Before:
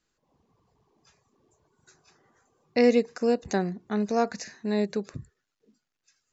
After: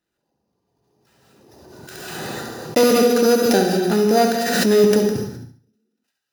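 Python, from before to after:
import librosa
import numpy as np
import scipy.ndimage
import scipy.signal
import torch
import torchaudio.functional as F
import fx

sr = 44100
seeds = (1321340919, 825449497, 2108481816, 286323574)

y = np.r_[np.sort(x[:len(x) // 8 * 8].reshape(-1, 8), axis=1).ravel(), x[len(x) // 8 * 8:]]
y = fx.highpass(y, sr, hz=200.0, slope=12, at=(2.83, 4.84))
y = fx.leveller(y, sr, passes=3)
y = fx.notch_comb(y, sr, f0_hz=1100.0)
y = fx.echo_feedback(y, sr, ms=69, feedback_pct=33, wet_db=-8.5)
y = fx.rev_gated(y, sr, seeds[0], gate_ms=290, shape='flat', drr_db=2.5)
y = fx.pre_swell(y, sr, db_per_s=28.0)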